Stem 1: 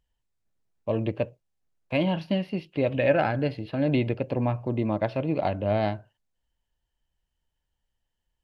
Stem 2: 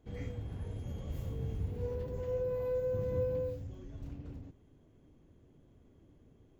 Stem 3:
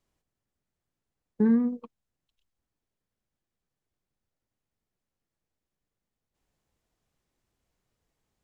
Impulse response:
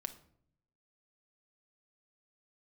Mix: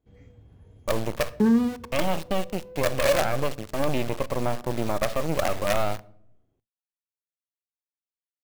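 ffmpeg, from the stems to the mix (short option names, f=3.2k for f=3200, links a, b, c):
-filter_complex "[0:a]firequalizer=gain_entry='entry(320,0);entry(590,10);entry(840,4)':delay=0.05:min_phase=1,acrusher=bits=3:dc=4:mix=0:aa=0.000001,volume=-3dB,asplit=2[a][b];[b]volume=-5.5dB[c];[1:a]volume=-11dB[d];[2:a]equalizer=f=1k:w=0.84:g=7,aeval=exprs='val(0)*gte(abs(val(0)),0.0188)':c=same,volume=-1dB,asplit=2[e][f];[f]volume=-5.5dB[g];[3:a]atrim=start_sample=2205[h];[c][g]amix=inputs=2:normalize=0[i];[i][h]afir=irnorm=-1:irlink=0[j];[a][d][e][j]amix=inputs=4:normalize=0,alimiter=limit=-13dB:level=0:latency=1:release=12"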